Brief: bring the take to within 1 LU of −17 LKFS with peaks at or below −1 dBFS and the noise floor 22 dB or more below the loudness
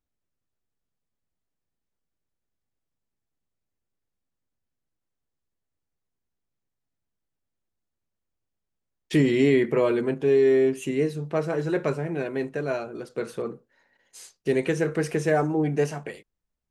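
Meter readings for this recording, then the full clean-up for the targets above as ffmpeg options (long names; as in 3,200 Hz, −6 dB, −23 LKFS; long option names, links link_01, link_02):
integrated loudness −24.5 LKFS; sample peak −10.0 dBFS; target loudness −17.0 LKFS
→ -af "volume=7.5dB"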